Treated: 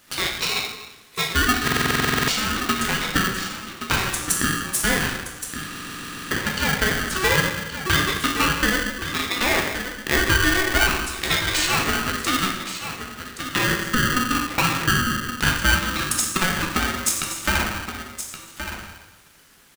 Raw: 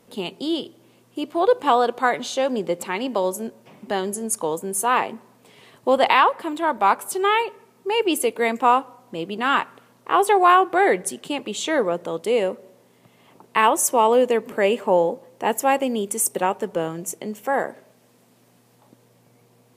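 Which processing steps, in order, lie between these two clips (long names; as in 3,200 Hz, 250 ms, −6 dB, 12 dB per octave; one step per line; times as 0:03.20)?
treble cut that deepens with the level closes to 1,300 Hz, closed at −14.5 dBFS
high-pass filter 980 Hz 12 dB per octave
in parallel at +2.5 dB: downward compressor, threshold −34 dBFS, peak gain reduction 17.5 dB
on the sum: brickwall limiter −16.5 dBFS, peak gain reduction 11 dB
transient designer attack +8 dB, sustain 0 dB
on a send: single-tap delay 1,122 ms −10 dB
on the sum: dense smooth reverb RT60 1.1 s, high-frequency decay 0.85×, DRR −0.5 dB
buffer that repeats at 0:01.63/0:05.66, samples 2,048, times 13
ring modulator with a square carrier 750 Hz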